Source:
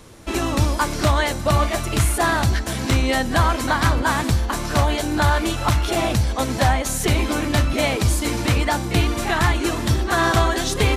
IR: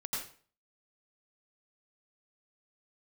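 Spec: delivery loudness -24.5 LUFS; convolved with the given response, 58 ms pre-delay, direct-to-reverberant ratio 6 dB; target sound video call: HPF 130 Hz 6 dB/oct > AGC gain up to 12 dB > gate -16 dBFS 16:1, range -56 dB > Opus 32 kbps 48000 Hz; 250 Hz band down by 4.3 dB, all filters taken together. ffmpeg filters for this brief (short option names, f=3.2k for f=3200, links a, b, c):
-filter_complex "[0:a]equalizer=f=250:t=o:g=-4.5,asplit=2[a][b];[1:a]atrim=start_sample=2205,adelay=58[c];[b][c]afir=irnorm=-1:irlink=0,volume=-8.5dB[d];[a][d]amix=inputs=2:normalize=0,highpass=f=130:p=1,dynaudnorm=m=12dB,agate=range=-56dB:threshold=-16dB:ratio=16,volume=0.5dB" -ar 48000 -c:a libopus -b:a 32k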